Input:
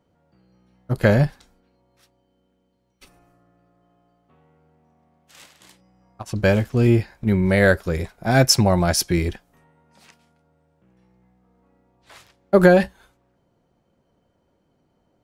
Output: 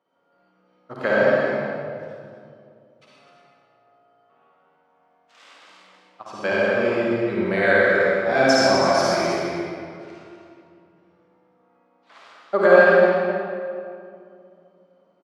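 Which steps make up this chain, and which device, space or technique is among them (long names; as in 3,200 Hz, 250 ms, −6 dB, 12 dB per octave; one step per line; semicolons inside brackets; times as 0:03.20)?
station announcement (band-pass filter 410–4,300 Hz; parametric band 1,200 Hz +6 dB 0.39 octaves; loudspeakers that aren't time-aligned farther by 18 metres −5 dB, 87 metres −8 dB; convolution reverb RT60 2.4 s, pre-delay 55 ms, DRR −6 dB)
level −5.5 dB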